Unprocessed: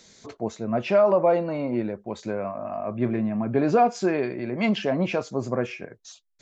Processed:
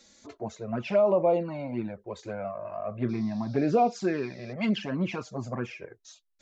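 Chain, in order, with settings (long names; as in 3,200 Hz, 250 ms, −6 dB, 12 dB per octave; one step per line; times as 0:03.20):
flanger swept by the level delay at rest 3.7 ms, full sweep at −16 dBFS
0:03.08–0:04.52: noise in a band 3,500–5,700 Hz −57 dBFS
level −2 dB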